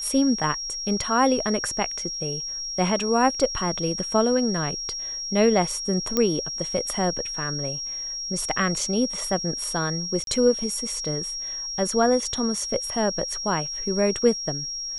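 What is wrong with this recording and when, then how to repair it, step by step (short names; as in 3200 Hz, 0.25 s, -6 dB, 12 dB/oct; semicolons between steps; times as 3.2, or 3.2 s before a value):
tone 5600 Hz -29 dBFS
6.17 pop -8 dBFS
10.24–10.27 gap 32 ms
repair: de-click; notch 5600 Hz, Q 30; interpolate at 10.24, 32 ms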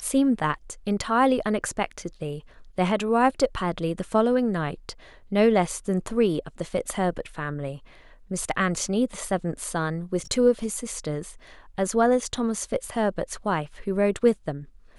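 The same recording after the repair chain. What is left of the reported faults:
none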